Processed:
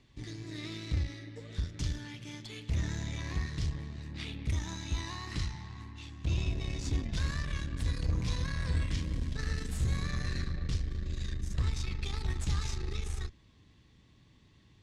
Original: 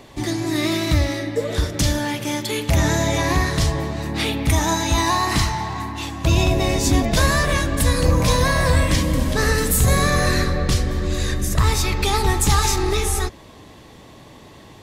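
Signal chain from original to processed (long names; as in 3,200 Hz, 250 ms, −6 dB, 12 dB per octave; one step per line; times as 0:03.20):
guitar amp tone stack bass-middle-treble 6-0-2
harmonic generator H 8 −22 dB, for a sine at −19 dBFS
high-frequency loss of the air 100 metres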